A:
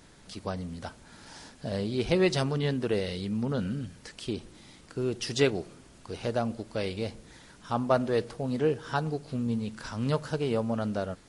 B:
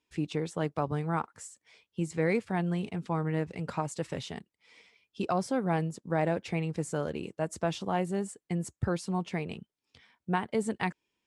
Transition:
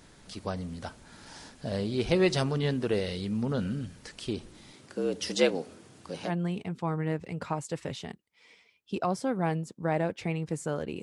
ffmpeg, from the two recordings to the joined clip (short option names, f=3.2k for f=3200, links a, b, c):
-filter_complex "[0:a]asettb=1/sr,asplit=3[a][b][c];[a]atrim=end=4.734[d];[b]atrim=start=4.73:end=6.32,asetpts=PTS-STARTPTS,afade=t=in:d=0.004:c=qsin,afade=t=out:st=1.586:d=0.004:c=qsin,afreqshift=76[e];[c]atrim=start=6.316[f];[d][e]acrossfade=d=0.004:c1=hsin:c2=qsin[g];[g][f]acrossfade=d=0.004:c1=qsin:c2=hsin,apad=whole_dur=11.02,atrim=end=11.02,atrim=end=6.32,asetpts=PTS-STARTPTS[h];[1:a]atrim=start=2.51:end=7.29,asetpts=PTS-STARTPTS[i];[h][i]acrossfade=d=0.08:c1=tri:c2=tri"